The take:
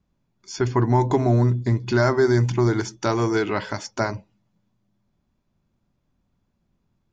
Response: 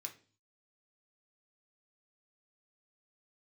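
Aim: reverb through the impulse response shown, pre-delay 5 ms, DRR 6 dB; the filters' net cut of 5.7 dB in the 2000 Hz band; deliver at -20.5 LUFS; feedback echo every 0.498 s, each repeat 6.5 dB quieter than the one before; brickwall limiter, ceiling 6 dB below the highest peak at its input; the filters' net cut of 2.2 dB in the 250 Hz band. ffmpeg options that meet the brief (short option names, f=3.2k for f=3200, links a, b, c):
-filter_complex "[0:a]equalizer=f=250:t=o:g=-3,equalizer=f=2k:t=o:g=-8.5,alimiter=limit=-15dB:level=0:latency=1,aecho=1:1:498|996|1494|1992|2490|2988:0.473|0.222|0.105|0.0491|0.0231|0.0109,asplit=2[a][b];[1:a]atrim=start_sample=2205,adelay=5[c];[b][c]afir=irnorm=-1:irlink=0,volume=-2dB[d];[a][d]amix=inputs=2:normalize=0,volume=3.5dB"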